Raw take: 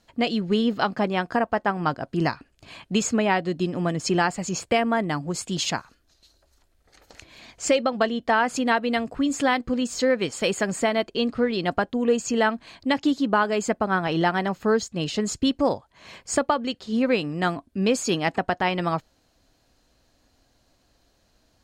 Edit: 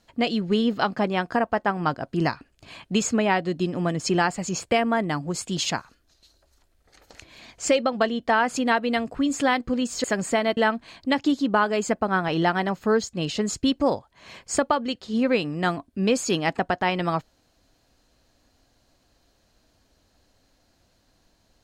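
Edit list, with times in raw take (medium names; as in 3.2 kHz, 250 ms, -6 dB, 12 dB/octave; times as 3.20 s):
10.04–10.54 s: delete
11.07–12.36 s: delete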